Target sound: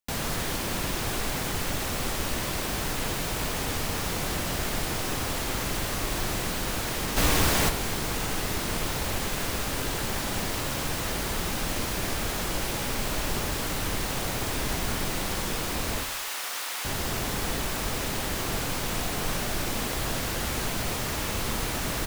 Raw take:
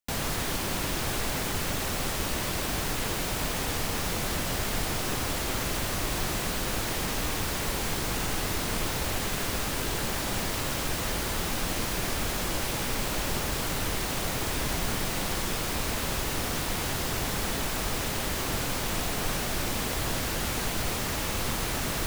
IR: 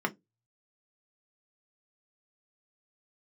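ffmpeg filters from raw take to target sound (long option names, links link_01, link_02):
-filter_complex "[0:a]asplit=3[link_01][link_02][link_03];[link_01]afade=type=out:start_time=7.16:duration=0.02[link_04];[link_02]acontrast=89,afade=type=in:start_time=7.16:duration=0.02,afade=type=out:start_time=7.68:duration=0.02[link_05];[link_03]afade=type=in:start_time=7.68:duration=0.02[link_06];[link_04][link_05][link_06]amix=inputs=3:normalize=0,asettb=1/sr,asplit=3[link_07][link_08][link_09];[link_07]atrim=end=16.034[link_10];[link_08]atrim=start=16.03:end=16.85,asetpts=PTS-STARTPTS,afade=type=in:duration=0.004:curve=qsin,afade=type=out:start_time=0.816:duration=0.004:curve=qsin,highpass=950[link_11];[link_09]atrim=start=16.846[link_12];[link_10][link_11]acrossfade=duration=0.004:curve1=hsin:curve2=qsin[link_13];[link_13][link_12]acrossfade=duration=0.004:curve1=qsin:curve2=hsin,asplit=2[link_14][link_15];[link_15]adelay=64,lowpass=frequency=2000:poles=1,volume=-10dB,asplit=2[link_16][link_17];[link_17]adelay=64,lowpass=frequency=2000:poles=1,volume=0.53,asplit=2[link_18][link_19];[link_19]adelay=64,lowpass=frequency=2000:poles=1,volume=0.53,asplit=2[link_20][link_21];[link_21]adelay=64,lowpass=frequency=2000:poles=1,volume=0.53,asplit=2[link_22][link_23];[link_23]adelay=64,lowpass=frequency=2000:poles=1,volume=0.53,asplit=2[link_24][link_25];[link_25]adelay=64,lowpass=frequency=2000:poles=1,volume=0.53[link_26];[link_14][link_16][link_18][link_20][link_22][link_24][link_26]amix=inputs=7:normalize=0"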